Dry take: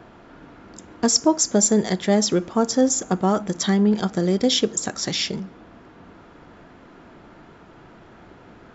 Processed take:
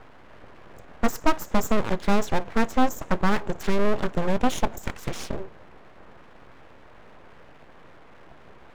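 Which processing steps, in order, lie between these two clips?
moving average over 9 samples
harmonic generator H 8 −20 dB, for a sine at −6 dBFS
full-wave rectification

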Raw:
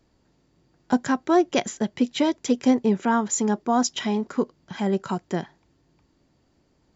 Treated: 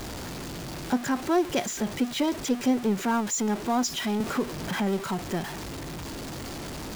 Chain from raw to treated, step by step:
converter with a step at zero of −24.5 dBFS
0:04.20–0:04.99: multiband upward and downward compressor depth 70%
level −6 dB

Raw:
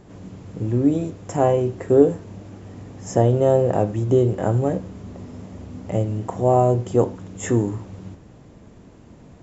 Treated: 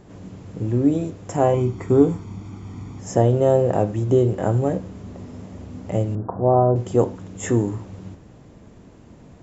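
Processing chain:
0:01.54–0:03.00: comb filter 0.9 ms, depth 71%
0:06.15–0:06.76: Butterworth low-pass 1,600 Hz 72 dB per octave

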